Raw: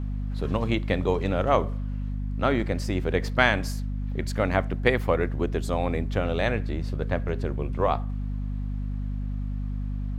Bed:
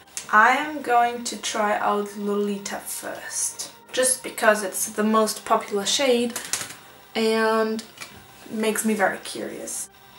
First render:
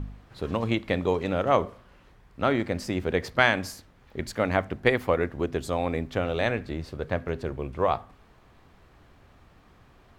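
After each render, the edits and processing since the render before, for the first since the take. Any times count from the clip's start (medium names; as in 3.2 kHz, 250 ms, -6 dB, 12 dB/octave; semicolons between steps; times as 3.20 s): de-hum 50 Hz, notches 5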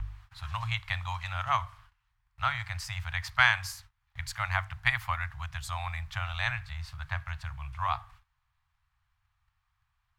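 gate -50 dBFS, range -19 dB; inverse Chebyshev band-stop 230–460 Hz, stop band 60 dB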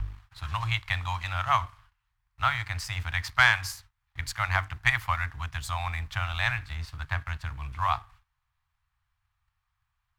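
waveshaping leveller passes 1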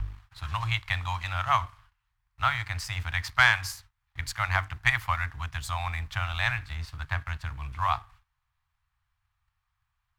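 no audible change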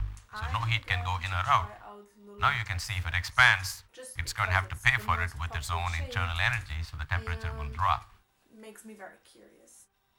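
add bed -25 dB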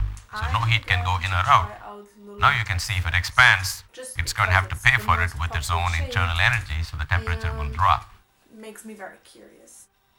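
trim +8 dB; peak limiter -2 dBFS, peak gain reduction 3 dB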